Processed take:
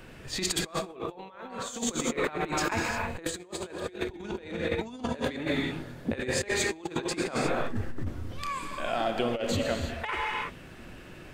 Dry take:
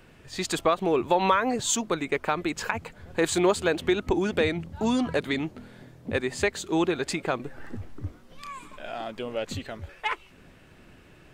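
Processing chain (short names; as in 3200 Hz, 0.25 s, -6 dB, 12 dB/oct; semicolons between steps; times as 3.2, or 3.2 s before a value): non-linear reverb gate 0.38 s flat, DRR 4 dB; negative-ratio compressor -31 dBFS, ratio -0.5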